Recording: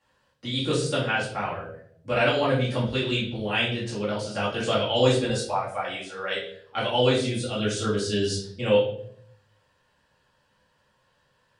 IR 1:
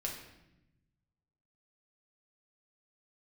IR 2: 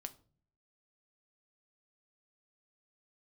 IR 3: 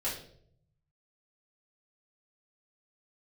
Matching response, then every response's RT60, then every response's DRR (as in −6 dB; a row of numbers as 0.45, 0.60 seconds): 3; 0.90 s, non-exponential decay, 0.65 s; −1.5, 8.5, −8.5 decibels